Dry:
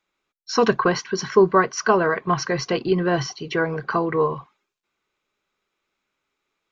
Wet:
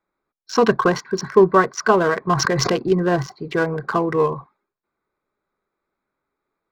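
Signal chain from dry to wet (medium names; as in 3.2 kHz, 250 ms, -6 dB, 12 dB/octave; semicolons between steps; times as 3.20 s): local Wiener filter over 15 samples; 2.35–2.78 s: swell ahead of each attack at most 20 dB/s; trim +2.5 dB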